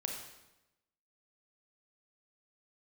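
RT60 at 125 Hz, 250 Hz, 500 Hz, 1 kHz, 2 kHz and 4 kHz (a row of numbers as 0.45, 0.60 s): 1.1, 1.1, 1.0, 0.95, 0.90, 0.85 s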